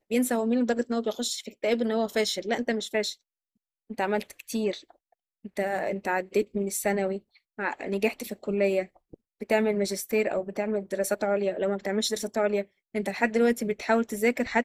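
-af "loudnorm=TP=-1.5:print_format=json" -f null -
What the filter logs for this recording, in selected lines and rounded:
"input_i" : "-27.7",
"input_tp" : "-7.5",
"input_lra" : "3.4",
"input_thresh" : "-38.0",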